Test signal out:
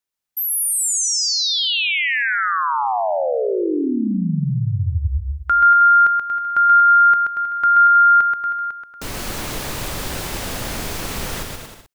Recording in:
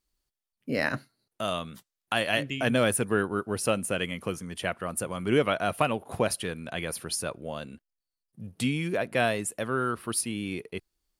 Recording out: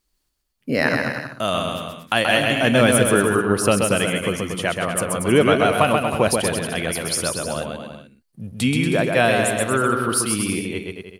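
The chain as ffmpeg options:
ffmpeg -i in.wav -af "aecho=1:1:130|234|317.2|383.8|437:0.631|0.398|0.251|0.158|0.1,volume=7.5dB" out.wav

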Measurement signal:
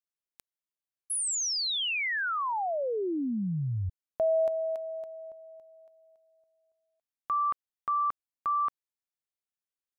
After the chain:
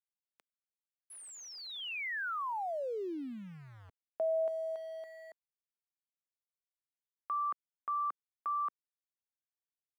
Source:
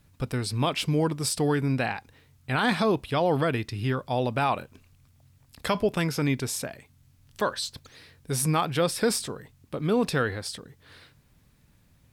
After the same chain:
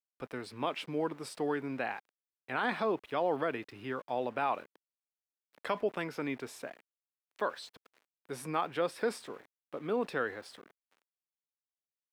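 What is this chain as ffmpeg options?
ffmpeg -i in.wav -filter_complex "[0:a]aeval=exprs='val(0)*gte(abs(val(0)),0.00794)':channel_layout=same,acrossover=split=250 2900:gain=0.1 1 0.2[link_01][link_02][link_03];[link_01][link_02][link_03]amix=inputs=3:normalize=0,volume=-6dB" out.wav

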